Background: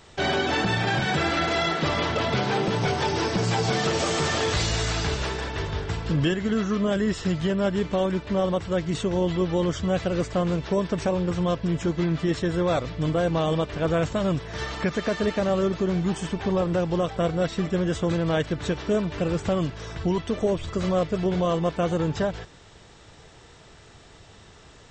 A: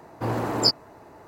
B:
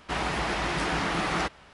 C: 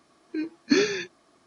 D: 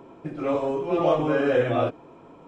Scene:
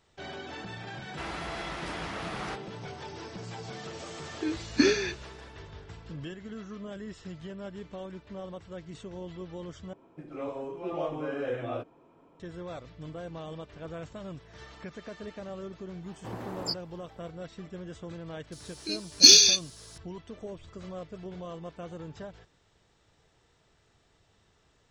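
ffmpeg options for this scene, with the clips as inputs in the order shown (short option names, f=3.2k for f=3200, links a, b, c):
-filter_complex "[3:a]asplit=2[a][b];[0:a]volume=-17dB[c];[b]aexciter=amount=14.8:drive=8.3:freq=3k[d];[c]asplit=2[e][f];[e]atrim=end=9.934[g];[4:a]atrim=end=2.47,asetpts=PTS-STARTPTS,volume=-11.5dB[h];[f]atrim=start=12.396[i];[2:a]atrim=end=1.73,asetpts=PTS-STARTPTS,volume=-10dB,afade=t=in:d=0.004:c=hsin,afade=t=out:st=1.726:d=0.004:c=hsin,adelay=1080[j];[a]atrim=end=1.46,asetpts=PTS-STARTPTS,volume=-1.5dB,afade=t=in:d=0.004:c=hsin,afade=t=out:st=1.456:d=0.004:c=hsin,adelay=4080[k];[1:a]atrim=end=1.27,asetpts=PTS-STARTPTS,volume=-13dB,afade=t=in:d=0.004:c=hsin,afade=t=out:st=1.266:d=0.004:c=hsin,adelay=16030[l];[d]atrim=end=1.46,asetpts=PTS-STARTPTS,volume=-8.5dB,afade=t=in:d=0.004:c=hsin,afade=t=out:st=1.456:d=0.004:c=hsin,adelay=18520[m];[g][h]acrossfade=d=0.004:c1=hsin:c2=hsin[n];[n][i]acrossfade=d=0.004:c1=hsin:c2=hsin[o];[o][j][k][l][m]amix=inputs=5:normalize=0"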